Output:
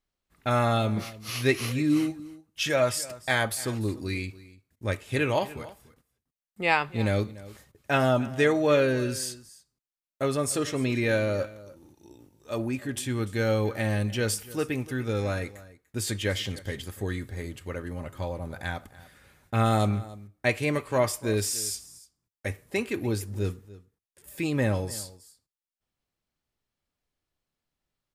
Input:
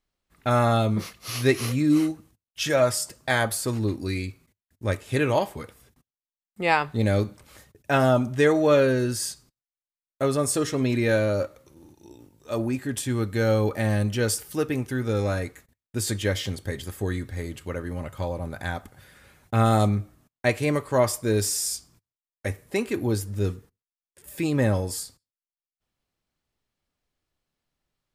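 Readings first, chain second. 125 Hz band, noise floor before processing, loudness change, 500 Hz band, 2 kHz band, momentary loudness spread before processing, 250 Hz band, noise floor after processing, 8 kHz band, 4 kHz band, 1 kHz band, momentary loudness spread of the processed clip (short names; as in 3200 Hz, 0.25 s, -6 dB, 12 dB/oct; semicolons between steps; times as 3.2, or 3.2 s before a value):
-3.5 dB, under -85 dBFS, -3.0 dB, -3.5 dB, -0.5 dB, 13 LU, -3.5 dB, under -85 dBFS, -3.0 dB, -1.0 dB, -3.0 dB, 13 LU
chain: echo 0.293 s -18.5 dB; dynamic EQ 2600 Hz, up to +5 dB, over -45 dBFS, Q 1.3; gain -3.5 dB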